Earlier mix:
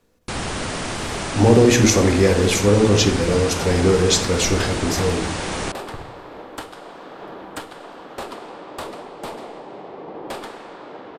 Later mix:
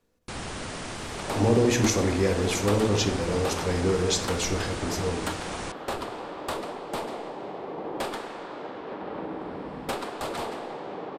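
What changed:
speech −8.5 dB
first sound −9.0 dB
second sound: entry −2.30 s

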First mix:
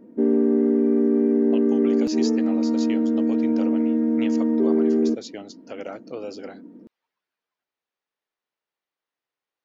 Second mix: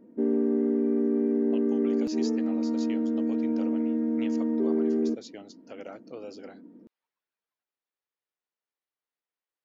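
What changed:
speech −7.5 dB
background −6.0 dB

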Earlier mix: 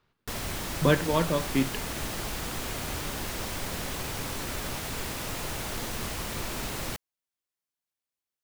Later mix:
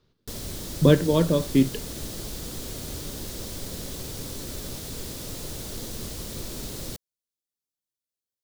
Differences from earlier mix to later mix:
speech +7.0 dB
master: add flat-topped bell 1,400 Hz −10.5 dB 2.3 octaves

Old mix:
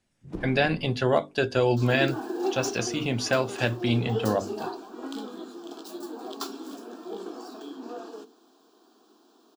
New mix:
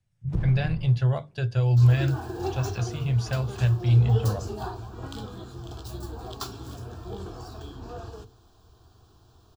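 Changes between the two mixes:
speech −9.5 dB
second sound: remove Butterworth high-pass 210 Hz
master: add low shelf with overshoot 180 Hz +12 dB, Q 3

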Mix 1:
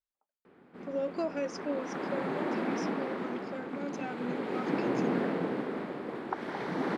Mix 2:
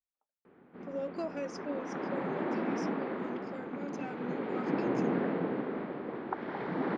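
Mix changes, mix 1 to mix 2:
speech −4.0 dB
background: add high-frequency loss of the air 290 metres

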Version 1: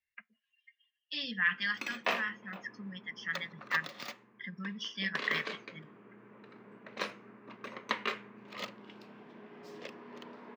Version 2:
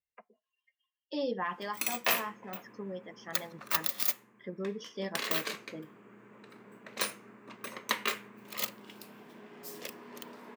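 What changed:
speech: remove drawn EQ curve 220 Hz 0 dB, 370 Hz −23 dB, 920 Hz −16 dB, 1,600 Hz +14 dB
master: remove high-frequency loss of the air 200 metres

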